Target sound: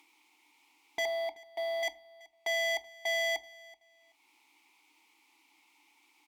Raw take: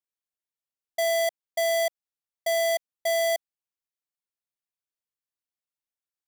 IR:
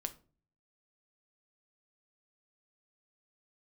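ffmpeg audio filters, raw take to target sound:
-filter_complex "[0:a]highpass=220,aemphasis=mode=production:type=75fm,acompressor=mode=upward:threshold=-33dB:ratio=2.5,asettb=1/sr,asplit=3[link_01][link_02][link_03];[link_01]atrim=end=1.054[link_04];[link_02]atrim=start=1.05:end=1.83,asetpts=PTS-STARTPTS,afade=type=in:duration=0.004:curve=qsin,afade=type=out:start_time=0.776:duration=0.004:curve=qsin,volume=24dB,asoftclip=hard,volume=-24dB[link_05];[link_03]atrim=start=1.826[link_06];[link_04][link_05]acrossfade=duration=0.004:curve1=hsin:curve2=qsin[link_07];[link_07][link_06]acrossfade=duration=0.004:curve1=qsin:curve2=hsin,asplit=3[link_08][link_09][link_10];[link_08]bandpass=frequency=300:width_type=q:width=8,volume=0dB[link_11];[link_09]bandpass=frequency=870:width_type=q:width=8,volume=-6dB[link_12];[link_10]bandpass=frequency=2240:width_type=q:width=8,volume=-9dB[link_13];[link_11][link_12][link_13]amix=inputs=3:normalize=0,asplit=2[link_14][link_15];[link_15]highpass=frequency=720:poles=1,volume=28dB,asoftclip=type=tanh:threshold=-27dB[link_16];[link_14][link_16]amix=inputs=2:normalize=0,lowpass=frequency=4200:poles=1,volume=-6dB,aecho=1:1:379|758:0.0794|0.0183,asplit=2[link_17][link_18];[1:a]atrim=start_sample=2205,lowshelf=frequency=70:gain=11.5[link_19];[link_18][link_19]afir=irnorm=-1:irlink=0,volume=2dB[link_20];[link_17][link_20]amix=inputs=2:normalize=0,volume=-2.5dB"

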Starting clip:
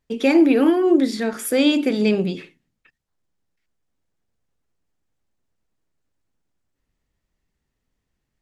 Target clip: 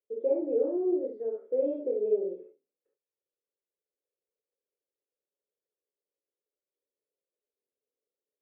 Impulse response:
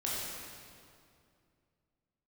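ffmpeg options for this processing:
-filter_complex "[0:a]asuperpass=centerf=470:order=4:qfactor=3[link_01];[1:a]atrim=start_sample=2205,atrim=end_sample=3528[link_02];[link_01][link_02]afir=irnorm=-1:irlink=0,volume=-3.5dB"

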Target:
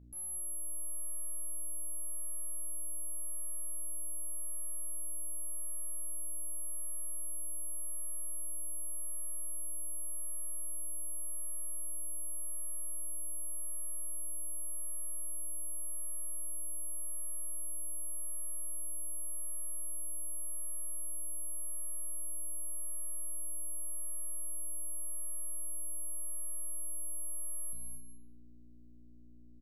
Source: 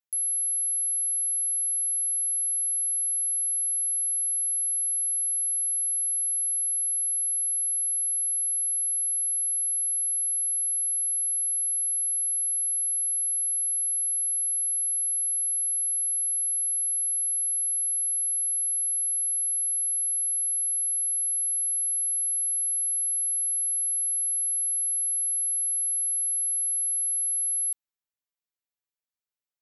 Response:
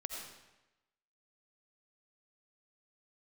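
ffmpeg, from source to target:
-filter_complex "[0:a]tremolo=f=0.87:d=0.29,aeval=exprs='val(0)+0.00251*(sin(2*PI*60*n/s)+sin(2*PI*2*60*n/s)/2+sin(2*PI*3*60*n/s)/3+sin(2*PI*4*60*n/s)/4+sin(2*PI*5*60*n/s)/5)':channel_layout=same,aeval=exprs='(tanh(178*val(0)+0.4)-tanh(0.4))/178':channel_layout=same,aecho=1:1:41|225|247|277:0.282|0.355|0.141|0.112,asplit=2[link_01][link_02];[1:a]atrim=start_sample=2205,adelay=30[link_03];[link_02][link_03]afir=irnorm=-1:irlink=0,volume=-5dB[link_04];[link_01][link_04]amix=inputs=2:normalize=0"

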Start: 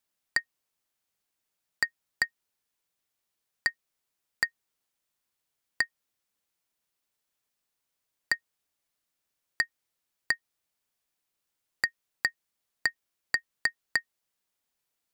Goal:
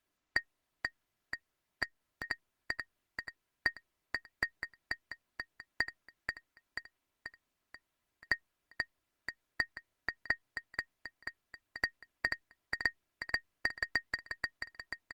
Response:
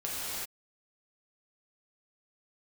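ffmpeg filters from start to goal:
-filter_complex "[0:a]aecho=1:1:485|970|1455|1940|2425|2910:0.299|0.161|0.0871|0.047|0.0254|0.0137,asoftclip=type=hard:threshold=-11.5dB,aecho=1:1:3:0.48,asettb=1/sr,asplit=3[link_01][link_02][link_03];[link_01]atrim=end=11.854[link_04];[link_02]atrim=start=11.85:end=12.28,asetpts=PTS-STARTPTS,afade=type=in:duration=0.004:curve=qsin,afade=type=out:start_time=0.426:duration=0.004:curve=qsin,bandreject=frequency=89.56:width_type=h:width=4,bandreject=frequency=179.12:width_type=h:width=4,bandreject=frequency=268.68:width_type=h:width=4,bandreject=frequency=358.24:width_type=h:width=4[link_05];[link_03]atrim=start=12.276[link_06];[link_04][link_05]acrossfade=duration=0.004:curve1=hsin:curve2=qsin[link_07];[link_07][link_06]acrossfade=duration=0.004:curve1=qsin:curve2=hsin,alimiter=limit=-17.5dB:level=0:latency=1:release=52,asettb=1/sr,asplit=3[link_08][link_09][link_10];[link_08]atrim=end=9.634[link_11];[link_09]atrim=start=9.63:end=10.31,asetpts=PTS-STARTPTS,afade=type=in:duration=0.004:curve=qsin,afade=type=out:start_time=0.676:duration=0.004:curve=qsin,acrossover=split=5700[link_12][link_13];[link_13]acompressor=threshold=-57dB:ratio=4:attack=1:release=60[link_14];[link_12][link_14]amix=inputs=2:normalize=0[link_15];[link_10]atrim=start=10.306[link_16];[link_11][link_15]acrossfade=duration=0.004:curve1=hsin:curve2=qsin[link_17];[link_17][link_16]acrossfade=duration=0.004:curve1=qsin:curve2=hsin,asoftclip=type=tanh:threshold=-19dB,asettb=1/sr,asplit=3[link_18][link_19][link_20];[link_18]atrim=end=1.834[link_21];[link_19]atrim=start=1.83:end=2.24,asetpts=PTS-STARTPTS,afade=type=in:duration=0.004:curve=qsin,afade=type=out:start_time=0.406:duration=0.004:curve=qsin,acompressor=threshold=-45dB:ratio=10[link_22];[link_20]atrim=start=2.236[link_23];[link_21][link_22]acrossfade=duration=0.004:curve1=hsin:curve2=qsin[link_24];[link_24][link_23]acrossfade=duration=0.004:curve1=qsin:curve2=hsin,bass=frequency=250:gain=5,treble=frequency=4000:gain=-12,volume=5dB" -ar 48000 -c:a libopus -b:a 24k

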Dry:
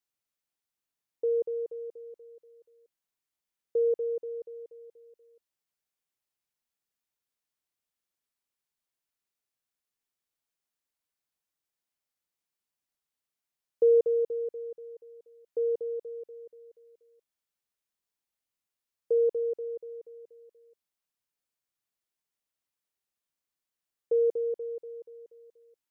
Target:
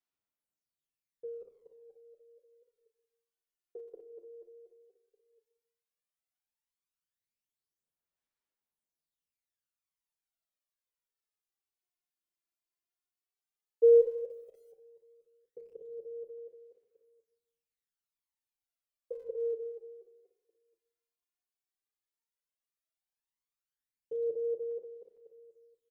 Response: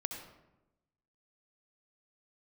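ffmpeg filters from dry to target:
-filter_complex "[0:a]bandreject=frequency=60:width_type=h:width=6,bandreject=frequency=120:width_type=h:width=6,bandreject=frequency=180:width_type=h:width=6,bandreject=frequency=240:width_type=h:width=6,bandreject=frequency=300:width_type=h:width=6,bandreject=frequency=360:width_type=h:width=6,asettb=1/sr,asplit=3[link_01][link_02][link_03];[link_01]atrim=end=13.954[link_04];[link_02]atrim=start=13.95:end=14.71,asetpts=PTS-STARTPTS,afade=type=in:duration=0.004:curve=qsin,afade=type=out:start_time=0.756:duration=0.004:curve=qsin,aeval=exprs='val(0)*gte(abs(val(0)),0.00168)':channel_layout=same[link_05];[link_03]atrim=start=14.706[link_06];[link_04][link_05]acrossfade=duration=0.004:curve1=hsin:curve2=qsin[link_07];[link_07][link_06]acrossfade=duration=0.004:curve1=qsin:curve2=hsin,aphaser=in_gain=1:out_gain=1:delay=2.9:decay=0.69:speed=0.12:type=sinusoidal,asplit=2[link_08][link_09];[1:a]atrim=start_sample=2205,asetrate=57330,aresample=44100,adelay=35[link_10];[link_09][link_10]afir=irnorm=-1:irlink=0,volume=-7.5dB[link_11];[link_08][link_11]amix=inputs=2:normalize=0,asplit=2[link_12][link_13];[link_13]adelay=8.1,afreqshift=0.85[link_14];[link_12][link_14]amix=inputs=2:normalize=1,volume=-8dB"

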